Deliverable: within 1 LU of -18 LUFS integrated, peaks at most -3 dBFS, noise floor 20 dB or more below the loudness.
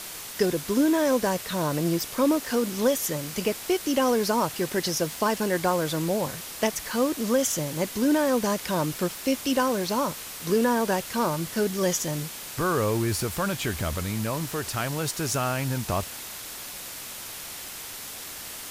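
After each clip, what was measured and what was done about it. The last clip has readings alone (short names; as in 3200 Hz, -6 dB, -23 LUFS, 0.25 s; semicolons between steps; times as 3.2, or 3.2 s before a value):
noise floor -39 dBFS; noise floor target -47 dBFS; loudness -26.5 LUFS; peak -10.0 dBFS; loudness target -18.0 LUFS
-> denoiser 8 dB, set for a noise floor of -39 dBFS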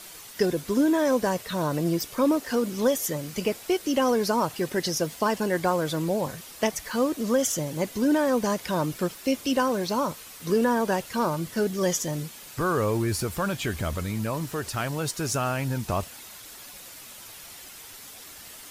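noise floor -45 dBFS; noise floor target -47 dBFS
-> denoiser 6 dB, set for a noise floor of -45 dBFS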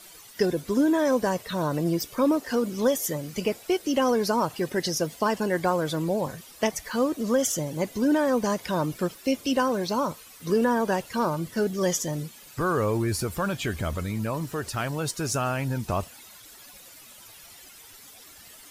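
noise floor -49 dBFS; loudness -26.5 LUFS; peak -10.5 dBFS; loudness target -18.0 LUFS
-> gain +8.5 dB; limiter -3 dBFS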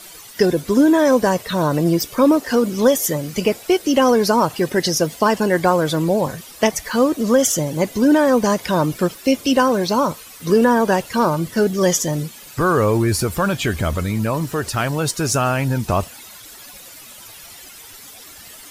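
loudness -18.0 LUFS; peak -3.0 dBFS; noise floor -40 dBFS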